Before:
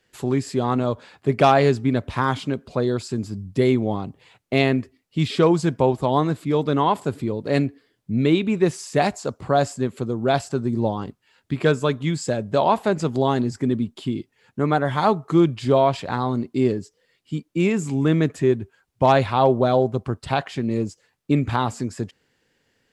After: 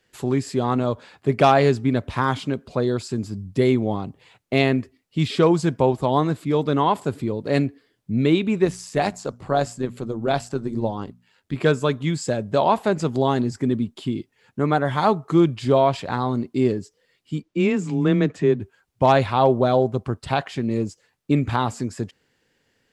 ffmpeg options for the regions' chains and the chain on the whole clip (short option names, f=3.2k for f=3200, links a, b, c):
-filter_complex "[0:a]asettb=1/sr,asplit=3[a][b][c];[a]atrim=end=8.654[d];[b]atrim=start=8.65:end=11.56,asetpts=PTS-STARTPTS,afade=t=in:d=0.004:c=qsin,afade=t=out:st=2.906:d=0.004:c=qsin,tremolo=f=100:d=0.462,bandreject=f=60:t=h:w=6,bandreject=f=120:t=h:w=6,bandreject=f=180:t=h:w=6,bandreject=f=240:t=h:w=6[e];[c]atrim=start=11.556[f];[d][e]acrossfade=d=0.004:c1=hsin:c2=qsin[g];[g][f]acrossfade=d=0.004:c1=qsin:c2=hsin,asettb=1/sr,asplit=3[h][i][j];[h]atrim=end=17.424[k];[i]atrim=start=17.42:end=18.6,asetpts=PTS-STARTPTS,afade=t=in:d=0.004:c=qsin,afade=t=out:st=1.176:d=0.004:c=qsin,lowpass=5.7k,afreqshift=13[l];[j]atrim=start=18.596[m];[k][l]acrossfade=d=0.004:c1=hsin:c2=qsin[n];[n][m]acrossfade=d=0.004:c1=qsin:c2=hsin"